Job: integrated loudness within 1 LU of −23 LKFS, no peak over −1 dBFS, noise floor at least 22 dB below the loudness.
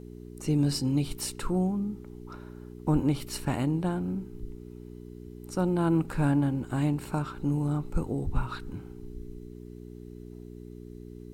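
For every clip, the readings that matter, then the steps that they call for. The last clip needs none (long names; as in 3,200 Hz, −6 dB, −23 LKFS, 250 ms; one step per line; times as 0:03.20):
mains hum 60 Hz; hum harmonics up to 420 Hz; level of the hum −43 dBFS; integrated loudness −29.5 LKFS; sample peak −13.0 dBFS; target loudness −23.0 LKFS
→ hum removal 60 Hz, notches 7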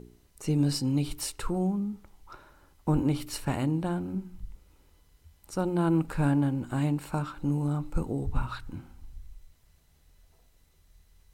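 mains hum none found; integrated loudness −30.0 LKFS; sample peak −13.0 dBFS; target loudness −23.0 LKFS
→ level +7 dB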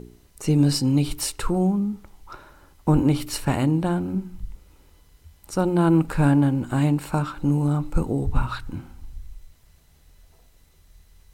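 integrated loudness −23.0 LKFS; sample peak −6.0 dBFS; background noise floor −57 dBFS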